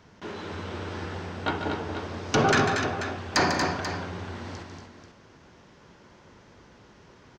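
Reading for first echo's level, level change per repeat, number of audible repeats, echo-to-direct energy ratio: -8.5 dB, no regular repeats, 4, -3.0 dB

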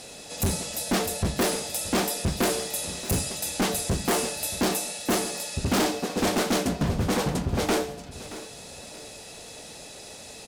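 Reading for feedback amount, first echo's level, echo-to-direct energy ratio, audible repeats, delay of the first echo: 33%, -16.0 dB, -15.5 dB, 2, 626 ms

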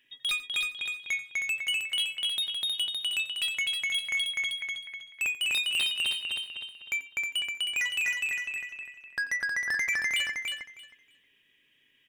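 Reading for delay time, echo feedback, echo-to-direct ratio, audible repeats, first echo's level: 88 ms, no regular repeats, -4.0 dB, 4, -17.0 dB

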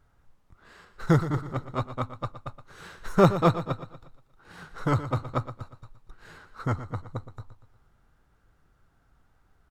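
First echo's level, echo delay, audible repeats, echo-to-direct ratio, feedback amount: -12.5 dB, 119 ms, 4, -11.5 dB, 46%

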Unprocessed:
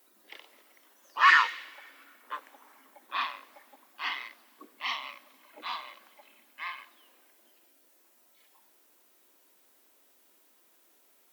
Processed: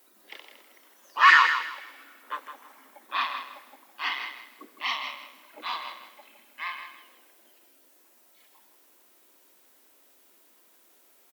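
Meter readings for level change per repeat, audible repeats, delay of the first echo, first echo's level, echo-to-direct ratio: -12.0 dB, 3, 160 ms, -9.0 dB, -8.5 dB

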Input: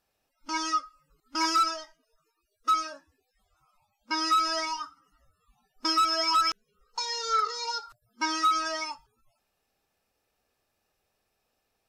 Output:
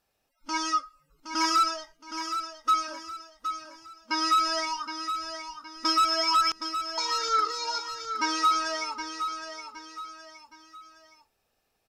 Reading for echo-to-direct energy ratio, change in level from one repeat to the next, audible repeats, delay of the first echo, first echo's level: -8.0 dB, -8.0 dB, 3, 767 ms, -8.5 dB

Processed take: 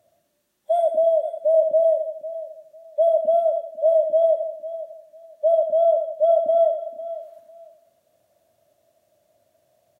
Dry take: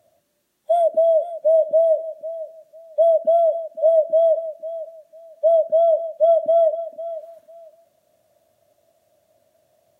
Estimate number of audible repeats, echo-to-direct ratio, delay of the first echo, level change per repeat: 2, -7.5 dB, 85 ms, -9.5 dB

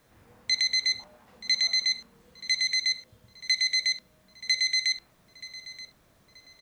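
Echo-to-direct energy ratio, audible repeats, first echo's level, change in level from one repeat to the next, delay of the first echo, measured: -16.5 dB, 2, -17.0 dB, -11.0 dB, 929 ms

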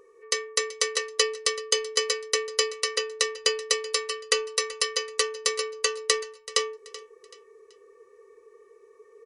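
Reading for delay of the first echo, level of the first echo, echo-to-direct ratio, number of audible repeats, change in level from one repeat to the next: 381 ms, -17.5 dB, -17.0 dB, 2, -9.0 dB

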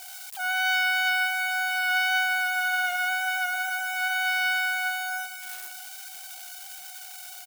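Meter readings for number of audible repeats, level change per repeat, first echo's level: 1, no regular repeats, -14.5 dB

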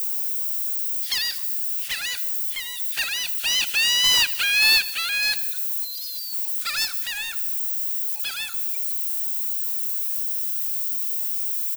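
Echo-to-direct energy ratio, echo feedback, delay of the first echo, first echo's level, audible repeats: -16.0 dB, 58%, 79 ms, -18.0 dB, 4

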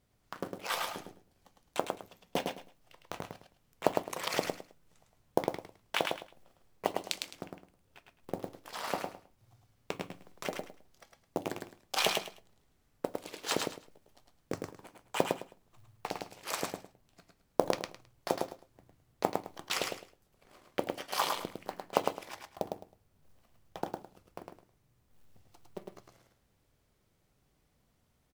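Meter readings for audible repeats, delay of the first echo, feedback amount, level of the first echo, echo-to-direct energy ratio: 3, 106 ms, 22%, -4.0 dB, -4.0 dB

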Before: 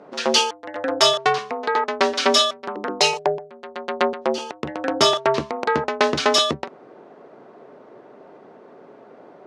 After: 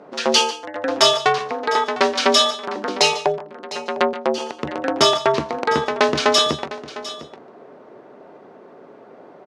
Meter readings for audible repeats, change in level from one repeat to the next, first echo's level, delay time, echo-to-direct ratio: 3, no regular repeats, -16.5 dB, 146 ms, -13.0 dB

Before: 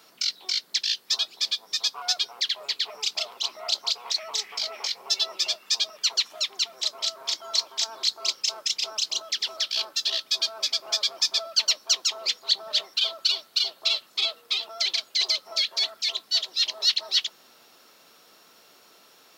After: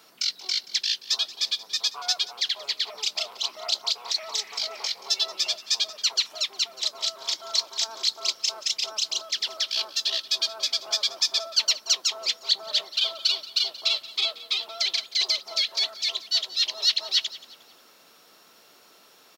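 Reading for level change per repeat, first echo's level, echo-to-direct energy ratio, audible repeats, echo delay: -8.5 dB, -18.0 dB, -17.5 dB, 2, 179 ms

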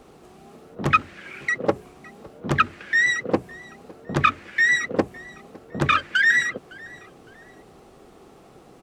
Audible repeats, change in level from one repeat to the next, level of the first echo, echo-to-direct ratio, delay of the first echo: 2, -10.0 dB, -23.5 dB, -23.0 dB, 559 ms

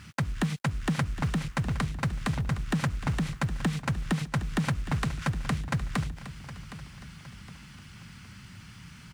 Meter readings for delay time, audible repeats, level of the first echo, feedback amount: 764 ms, 3, -14.0 dB, 43%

